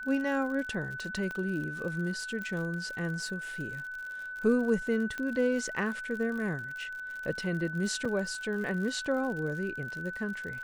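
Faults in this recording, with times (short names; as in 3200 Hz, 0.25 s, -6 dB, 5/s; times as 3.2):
crackle 67/s -38 dBFS
tone 1500 Hz -37 dBFS
1.31 pop -25 dBFS
2.42 pop -26 dBFS
5.18 pop -23 dBFS
8.05 gap 3.8 ms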